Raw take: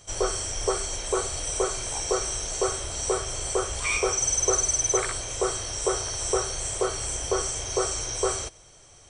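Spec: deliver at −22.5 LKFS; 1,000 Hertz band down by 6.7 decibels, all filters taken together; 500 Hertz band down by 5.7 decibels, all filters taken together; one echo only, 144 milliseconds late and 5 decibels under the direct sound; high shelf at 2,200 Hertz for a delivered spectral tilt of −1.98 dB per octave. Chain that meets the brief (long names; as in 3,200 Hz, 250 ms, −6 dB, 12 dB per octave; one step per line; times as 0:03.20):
parametric band 500 Hz −6 dB
parametric band 1,000 Hz −6.5 dB
high-shelf EQ 2,200 Hz −3.5 dB
single-tap delay 144 ms −5 dB
level +6 dB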